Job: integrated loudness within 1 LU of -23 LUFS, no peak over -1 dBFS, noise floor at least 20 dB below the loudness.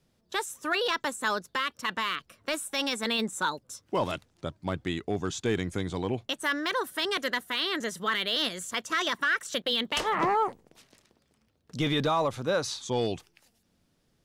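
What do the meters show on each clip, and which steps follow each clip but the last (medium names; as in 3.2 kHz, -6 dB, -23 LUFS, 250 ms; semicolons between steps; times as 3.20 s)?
clipped samples 0.2%; clipping level -19.0 dBFS; loudness -29.5 LUFS; peak level -19.0 dBFS; loudness target -23.0 LUFS
-> clip repair -19 dBFS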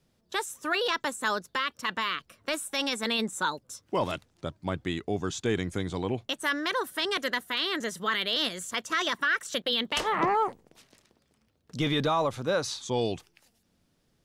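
clipped samples 0.0%; loudness -29.5 LUFS; peak level -14.0 dBFS; loudness target -23.0 LUFS
-> trim +6.5 dB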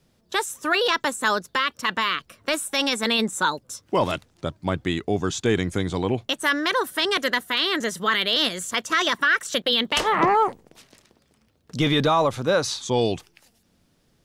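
loudness -23.0 LUFS; peak level -7.5 dBFS; noise floor -65 dBFS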